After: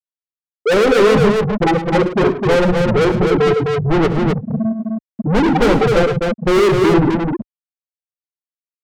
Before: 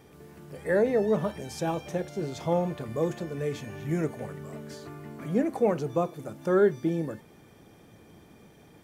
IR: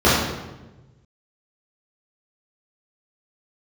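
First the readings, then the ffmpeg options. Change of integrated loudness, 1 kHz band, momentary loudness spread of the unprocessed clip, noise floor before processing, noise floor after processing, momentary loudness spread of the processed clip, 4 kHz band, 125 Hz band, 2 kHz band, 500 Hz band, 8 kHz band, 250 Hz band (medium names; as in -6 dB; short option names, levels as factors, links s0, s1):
+14.0 dB, +16.5 dB, 17 LU, -55 dBFS, under -85 dBFS, 8 LU, +21.0 dB, +15.0 dB, +17.5 dB, +13.5 dB, no reading, +14.5 dB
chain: -filter_complex "[0:a]aeval=exprs='val(0)+0.5*0.0178*sgn(val(0))':c=same,equalizer=f=640:t=o:w=0.44:g=-11,asplit=2[s0][s1];[1:a]atrim=start_sample=2205,lowpass=3100[s2];[s1][s2]afir=irnorm=-1:irlink=0,volume=0.0126[s3];[s0][s3]amix=inputs=2:normalize=0,afftfilt=real='re*gte(hypot(re,im),0.224)':imag='im*gte(hypot(re,im),0.224)':win_size=1024:overlap=0.75,asplit=2[s4][s5];[s5]highpass=f=720:p=1,volume=126,asoftclip=type=tanh:threshold=0.316[s6];[s4][s6]amix=inputs=2:normalize=0,lowpass=f=3800:p=1,volume=0.501,asubboost=boost=3.5:cutoff=58,aecho=1:1:71|107|257:0.178|0.251|0.631,volume=1.5"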